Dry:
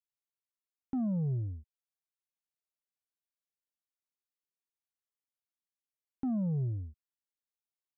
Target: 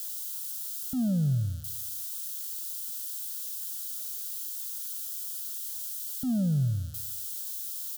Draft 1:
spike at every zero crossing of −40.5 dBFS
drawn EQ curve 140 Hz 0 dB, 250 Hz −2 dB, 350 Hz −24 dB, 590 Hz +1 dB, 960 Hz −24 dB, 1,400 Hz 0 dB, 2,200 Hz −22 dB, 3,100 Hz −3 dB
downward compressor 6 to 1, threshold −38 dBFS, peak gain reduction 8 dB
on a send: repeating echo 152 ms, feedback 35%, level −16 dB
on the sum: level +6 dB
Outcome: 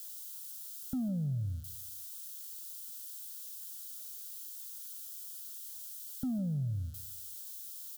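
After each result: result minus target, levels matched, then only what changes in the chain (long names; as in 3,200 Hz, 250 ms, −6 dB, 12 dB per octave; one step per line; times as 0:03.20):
downward compressor: peak gain reduction +8 dB; spike at every zero crossing: distortion −9 dB
remove: downward compressor 6 to 1, threshold −38 dBFS, peak gain reduction 8 dB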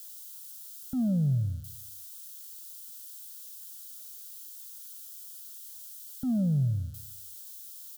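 spike at every zero crossing: distortion −9 dB
change: spike at every zero crossing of −31.5 dBFS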